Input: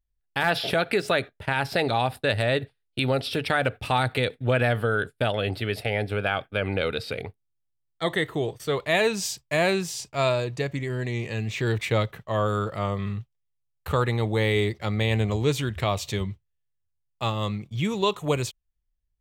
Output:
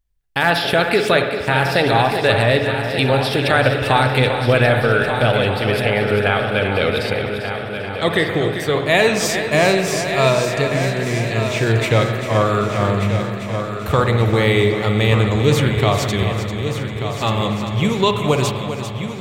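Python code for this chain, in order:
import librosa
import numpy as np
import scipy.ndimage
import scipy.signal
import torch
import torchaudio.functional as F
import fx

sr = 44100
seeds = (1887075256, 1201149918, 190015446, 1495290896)

p1 = x + fx.echo_heads(x, sr, ms=395, heads='first and third', feedback_pct=62, wet_db=-10, dry=0)
p2 = fx.rev_spring(p1, sr, rt60_s=1.5, pass_ms=(53, 60), chirp_ms=55, drr_db=6.0)
y = p2 * librosa.db_to_amplitude(7.0)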